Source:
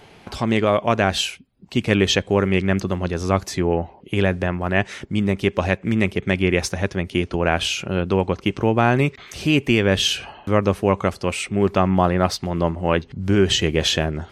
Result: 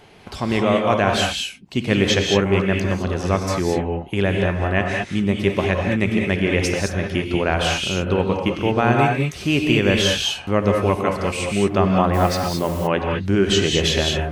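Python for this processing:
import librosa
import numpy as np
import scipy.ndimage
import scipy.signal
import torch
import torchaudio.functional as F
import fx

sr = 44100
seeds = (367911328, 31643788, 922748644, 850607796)

y = fx.rev_gated(x, sr, seeds[0], gate_ms=240, shape='rising', drr_db=1.0)
y = fx.dmg_noise_colour(y, sr, seeds[1], colour='white', level_db=-39.0, at=(12.13, 12.86), fade=0.02)
y = y * librosa.db_to_amplitude(-1.5)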